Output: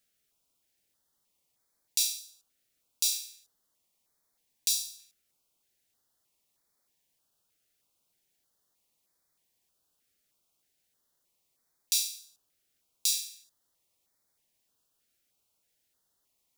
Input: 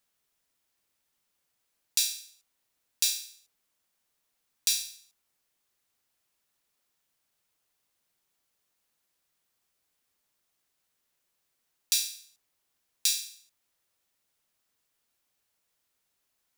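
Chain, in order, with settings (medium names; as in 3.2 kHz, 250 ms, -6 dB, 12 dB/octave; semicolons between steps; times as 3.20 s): in parallel at 0 dB: peak limiter -15 dBFS, peak gain reduction 10 dB; on the sum: dynamic bell 1.4 kHz, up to -7 dB, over -45 dBFS, Q 0.86; step-sequenced notch 3.2 Hz 990–2800 Hz; trim -4.5 dB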